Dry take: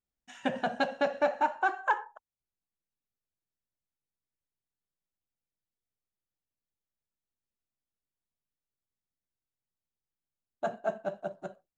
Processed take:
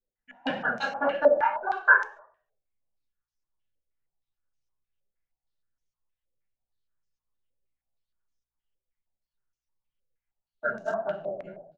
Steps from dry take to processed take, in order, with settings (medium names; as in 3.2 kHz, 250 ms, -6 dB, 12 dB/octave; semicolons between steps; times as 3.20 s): random holes in the spectrogram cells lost 35%; reverberation RT60 0.45 s, pre-delay 3 ms, DRR -6 dB; flange 1.7 Hz, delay 4.9 ms, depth 6.9 ms, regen +31%; hum notches 60/120/180/240/300/360 Hz; frequency-shifting echo 107 ms, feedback 42%, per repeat +56 Hz, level -23 dB; short-mantissa float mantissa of 4-bit; dynamic bell 1.4 kHz, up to +6 dB, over -42 dBFS, Q 1.8; step-sequenced low-pass 6.4 Hz 520–6000 Hz; trim -3 dB